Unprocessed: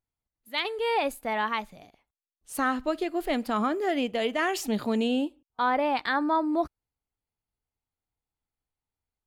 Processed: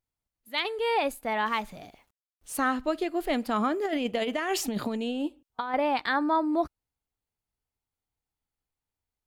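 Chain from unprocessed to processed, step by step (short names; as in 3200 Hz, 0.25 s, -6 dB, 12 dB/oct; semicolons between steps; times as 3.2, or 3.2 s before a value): 1.46–2.57 G.711 law mismatch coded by mu; 3.85–5.74 negative-ratio compressor -28 dBFS, ratio -0.5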